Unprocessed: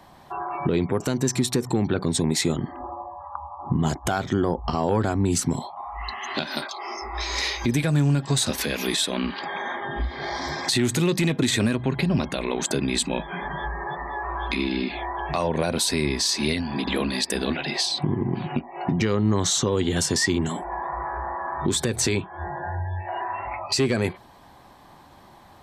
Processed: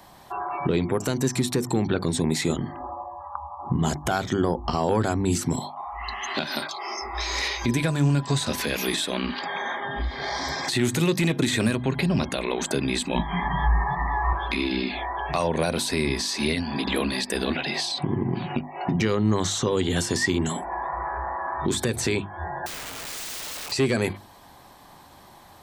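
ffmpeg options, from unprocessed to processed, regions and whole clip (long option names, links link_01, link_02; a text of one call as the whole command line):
ffmpeg -i in.wav -filter_complex "[0:a]asettb=1/sr,asplit=3[link_01][link_02][link_03];[link_01]atrim=end=7.484[link_04];[link_02]atrim=start=7.48:end=8.67,asetpts=PTS-STARTPTS,afade=type=in:duration=0.004:curve=qsin,afade=type=out:start_time=1.186:duration=0.004:curve=qsin,highshelf=frequency=9400:gain=-10.5,aeval=exprs='val(0)+0.00891*sin(2*PI*1000*n/s)':channel_layout=same[link_05];[link_03]atrim=start=8.666[link_06];[link_04][link_05]acrossfade=duration=0.004:curve1=hsin:curve2=qsin[link_07];[link_07][link_06]acrossfade=duration=0.004:curve1=qsin:curve2=hsin,asettb=1/sr,asplit=3[link_08][link_09][link_10];[link_08]atrim=end=13.154[link_11];[link_09]atrim=start=13.15:end=14.33,asetpts=PTS-STARTPTS,afade=type=in:duration=0.004:curve=qsin,afade=type=out:start_time=1.176:duration=0.004:curve=qsin,lowshelf=frequency=180:gain=10,aecho=1:1:1:0.9,atrim=end_sample=52038[link_12];[link_10]atrim=start=14.326[link_13];[link_11][link_12]acrossfade=duration=0.004:curve1=hsin:curve2=qsin[link_14];[link_14][link_13]acrossfade=duration=0.004:curve1=qsin:curve2=hsin,asettb=1/sr,asplit=3[link_15][link_16][link_17];[link_15]atrim=end=22.664[link_18];[link_16]atrim=start=22.66:end=23.72,asetpts=PTS-STARTPTS,afade=type=in:duration=0.004:curve=qsin,afade=type=out:start_time=1.056:duration=0.004:curve=qsin,aeval=exprs='(mod(44.7*val(0)+1,2)-1)/44.7':channel_layout=same,equalizer=frequency=12000:width=2.5:gain=-6.5[link_19];[link_17]atrim=start=23.716[link_20];[link_18][link_19]acrossfade=duration=0.004:curve1=hsin:curve2=qsin[link_21];[link_21][link_20]acrossfade=duration=0.004:curve1=qsin:curve2=hsin,acrossover=split=2900[link_22][link_23];[link_23]acompressor=threshold=-34dB:ratio=4:attack=1:release=60[link_24];[link_22][link_24]amix=inputs=2:normalize=0,highshelf=frequency=4900:gain=9,bandreject=frequency=50:width_type=h:width=6,bandreject=frequency=100:width_type=h:width=6,bandreject=frequency=150:width_type=h:width=6,bandreject=frequency=200:width_type=h:width=6,bandreject=frequency=250:width_type=h:width=6,bandreject=frequency=300:width_type=h:width=6,bandreject=frequency=350:width_type=h:width=6" out.wav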